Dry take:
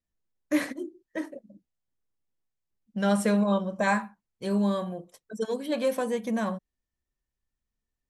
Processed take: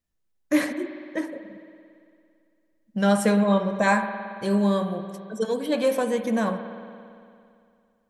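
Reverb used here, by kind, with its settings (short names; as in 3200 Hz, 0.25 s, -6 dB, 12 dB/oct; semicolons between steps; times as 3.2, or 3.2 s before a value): spring tank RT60 2.4 s, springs 56 ms, chirp 40 ms, DRR 8.5 dB; gain +4 dB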